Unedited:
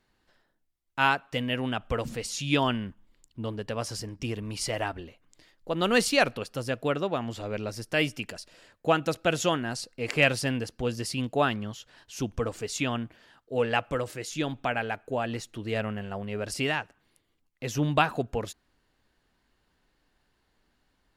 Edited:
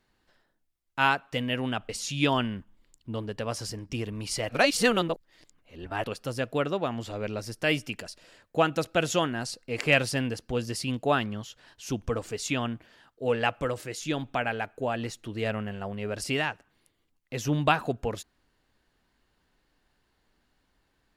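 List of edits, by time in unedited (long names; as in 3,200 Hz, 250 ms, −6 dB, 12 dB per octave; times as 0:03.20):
0:01.89–0:02.19: remove
0:04.79–0:06.34: reverse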